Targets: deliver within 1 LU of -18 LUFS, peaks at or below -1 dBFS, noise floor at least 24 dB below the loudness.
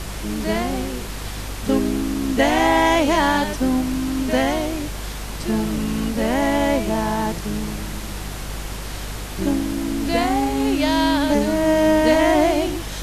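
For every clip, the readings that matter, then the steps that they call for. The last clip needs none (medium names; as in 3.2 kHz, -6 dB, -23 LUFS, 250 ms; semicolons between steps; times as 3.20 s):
hum 50 Hz; highest harmonic 250 Hz; hum level -29 dBFS; noise floor -30 dBFS; noise floor target -45 dBFS; loudness -21.0 LUFS; peak level -4.0 dBFS; loudness target -18.0 LUFS
-> de-hum 50 Hz, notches 5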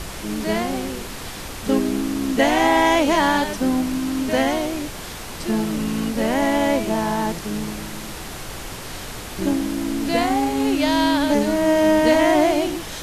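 hum not found; noise floor -33 dBFS; noise floor target -45 dBFS
-> noise print and reduce 12 dB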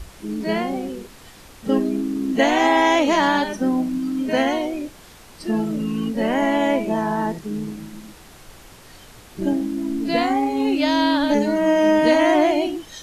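noise floor -45 dBFS; loudness -20.5 LUFS; peak level -4.5 dBFS; loudness target -18.0 LUFS
-> trim +2.5 dB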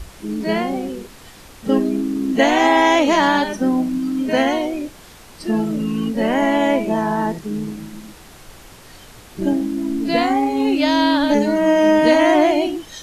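loudness -18.0 LUFS; peak level -2.0 dBFS; noise floor -43 dBFS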